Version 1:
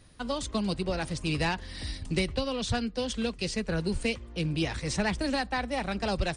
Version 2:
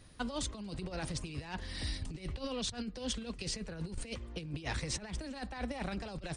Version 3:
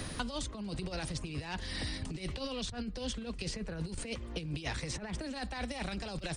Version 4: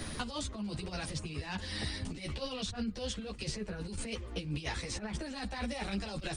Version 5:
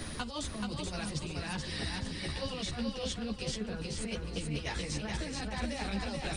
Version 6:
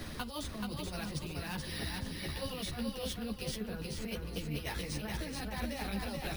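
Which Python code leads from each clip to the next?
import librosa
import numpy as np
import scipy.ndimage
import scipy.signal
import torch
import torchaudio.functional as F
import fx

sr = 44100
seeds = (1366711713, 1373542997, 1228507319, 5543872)

y1 = fx.over_compress(x, sr, threshold_db=-33.0, ratio=-0.5)
y1 = y1 * librosa.db_to_amplitude(-5.0)
y2 = fx.band_squash(y1, sr, depth_pct=100)
y3 = fx.ensemble(y2, sr)
y3 = y3 * librosa.db_to_amplitude(3.5)
y4 = fx.echo_feedback(y3, sr, ms=430, feedback_pct=39, wet_db=-3.5)
y5 = np.repeat(scipy.signal.resample_poly(y4, 1, 3), 3)[:len(y4)]
y5 = y5 * librosa.db_to_amplitude(-2.0)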